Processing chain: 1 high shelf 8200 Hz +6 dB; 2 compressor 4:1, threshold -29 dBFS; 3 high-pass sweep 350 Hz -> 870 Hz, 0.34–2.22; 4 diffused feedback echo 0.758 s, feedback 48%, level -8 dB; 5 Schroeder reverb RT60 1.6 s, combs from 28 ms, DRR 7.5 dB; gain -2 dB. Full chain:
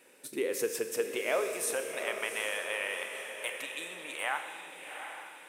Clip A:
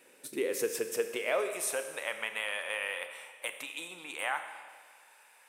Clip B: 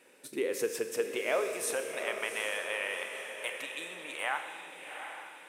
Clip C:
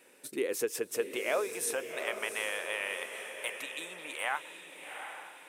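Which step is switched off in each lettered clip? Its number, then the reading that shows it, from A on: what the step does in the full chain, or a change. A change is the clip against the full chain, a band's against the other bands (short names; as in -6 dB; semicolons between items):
4, echo-to-direct -4.0 dB to -7.5 dB; 1, 8 kHz band -2.0 dB; 5, echo-to-direct -4.0 dB to -7.0 dB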